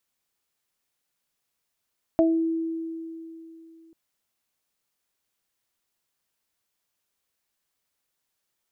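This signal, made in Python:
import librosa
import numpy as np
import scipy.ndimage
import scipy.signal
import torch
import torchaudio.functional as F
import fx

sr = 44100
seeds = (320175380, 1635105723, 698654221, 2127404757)

y = fx.additive(sr, length_s=1.74, hz=327.0, level_db=-17, upper_db=(2.0,), decay_s=3.07, upper_decays_s=(0.29,))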